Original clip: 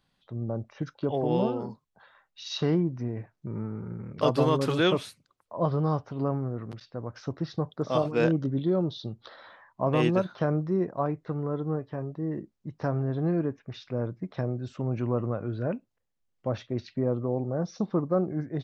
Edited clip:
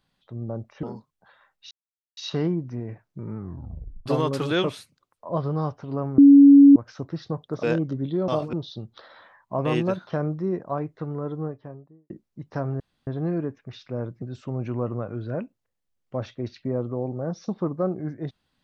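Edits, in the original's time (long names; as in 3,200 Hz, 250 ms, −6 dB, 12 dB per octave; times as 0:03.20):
0:00.83–0:01.57: remove
0:02.45: splice in silence 0.46 s
0:03.65: tape stop 0.69 s
0:06.46–0:07.04: beep over 281 Hz −7 dBFS
0:07.91–0:08.16: move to 0:08.81
0:11.59–0:12.38: fade out and dull
0:13.08: splice in room tone 0.27 s
0:14.23–0:14.54: remove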